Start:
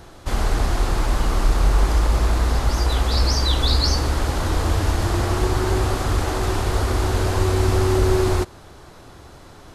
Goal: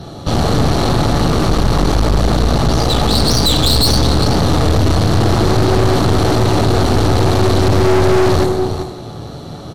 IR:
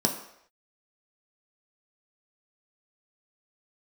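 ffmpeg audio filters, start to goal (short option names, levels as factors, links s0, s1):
-filter_complex "[0:a]aecho=1:1:391:0.237[s0];[1:a]atrim=start_sample=2205,asetrate=32634,aresample=44100[s1];[s0][s1]afir=irnorm=-1:irlink=0,aeval=exprs='(tanh(3.55*val(0)+0.65)-tanh(0.65))/3.55':c=same,volume=1.12"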